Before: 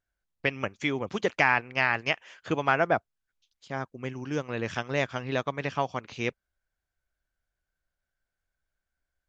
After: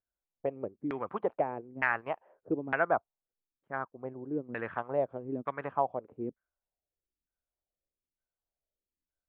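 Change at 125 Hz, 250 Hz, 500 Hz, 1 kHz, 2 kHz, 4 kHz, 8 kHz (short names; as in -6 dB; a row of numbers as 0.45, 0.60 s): -10.5 dB, -4.0 dB, -3.0 dB, -4.5 dB, -8.0 dB, under -20 dB, n/a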